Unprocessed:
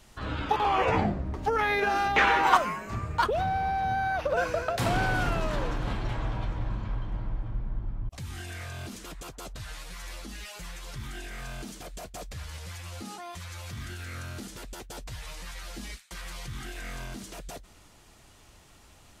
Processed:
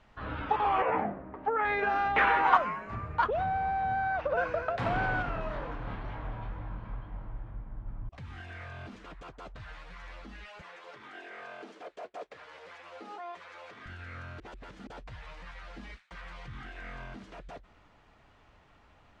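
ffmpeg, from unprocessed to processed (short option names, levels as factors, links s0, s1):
-filter_complex "[0:a]asettb=1/sr,asplit=3[s0][s1][s2];[s0]atrim=end=0.824[s3];[s1]atrim=start=0.82:end=1.65,asetpts=PTS-STARTPTS,afade=t=in:d=0.004:c=qsin,afade=t=out:st=0.826:d=0.004:c=qsin,acrossover=split=190 2600:gain=0.158 1 0.112[s4][s5][s6];[s4][s5][s6]amix=inputs=3:normalize=0[s7];[s2]atrim=start=1.646[s8];[s3][s7]acrossfade=d=0.004:c1=hsin:c2=qsin[s9];[s9][s8]acrossfade=d=0.004:c1=qsin:c2=hsin,asettb=1/sr,asplit=3[s10][s11][s12];[s10]atrim=end=5.224[s13];[s11]atrim=start=5.22:end=7.86,asetpts=PTS-STARTPTS,afade=t=in:d=0.004:c=qsin,afade=t=out:st=2.636:d=0.004:c=qsin,flanger=delay=19.5:depth=7.6:speed=2.1[s14];[s12]atrim=start=7.856[s15];[s13][s14]acrossfade=d=0.004:c1=hsin:c2=qsin[s16];[s16][s15]acrossfade=d=0.004:c1=qsin:c2=hsin,asettb=1/sr,asplit=3[s17][s18][s19];[s17]atrim=end=10.614[s20];[s18]atrim=start=10.61:end=13.86,asetpts=PTS-STARTPTS,afade=t=in:d=0.004:c=qsin,afade=t=out:st=3.246:d=0.004:c=qsin,highpass=f=410:t=q:w=1.9[s21];[s19]atrim=start=13.856[s22];[s20][s21]acrossfade=d=0.004:c1=hsin:c2=qsin[s23];[s23][s22]acrossfade=d=0.004:c1=qsin:c2=hsin,asplit=3[s24][s25][s26];[s24]atrim=end=14.402[s27];[s25]atrim=start=14.398:end=14.872,asetpts=PTS-STARTPTS,areverse[s28];[s26]atrim=start=14.868[s29];[s27][s28]acrossfade=d=0.004:c1=hsin:c2=hsin[s30];[s30][s29]acrossfade=d=0.004:c1=hsin:c2=hsin,lowpass=2000,lowshelf=f=490:g=-6,bandreject=f=360:w=12"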